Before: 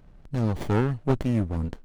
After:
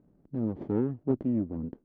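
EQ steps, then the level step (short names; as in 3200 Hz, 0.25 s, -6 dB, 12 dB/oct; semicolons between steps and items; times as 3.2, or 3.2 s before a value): band-pass 290 Hz, Q 1.6; air absorption 60 m; 0.0 dB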